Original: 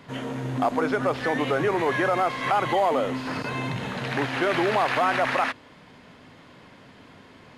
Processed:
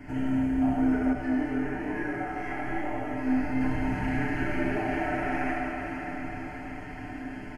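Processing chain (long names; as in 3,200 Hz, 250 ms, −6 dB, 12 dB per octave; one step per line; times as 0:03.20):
sub-octave generator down 1 octave, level −4 dB
downward compressor 5 to 1, threshold −37 dBFS, peak gain reduction 17 dB
bass and treble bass +12 dB, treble −5 dB
phaser with its sweep stopped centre 750 Hz, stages 8
comb filter 6.7 ms, depth 86%
feedback delay with all-pass diffusion 574 ms, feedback 49%, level −7 dB
four-comb reverb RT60 2.5 s, combs from 27 ms, DRR −5 dB
0:01.13–0:03.61: chorus effect 1 Hz, delay 17 ms, depth 5.6 ms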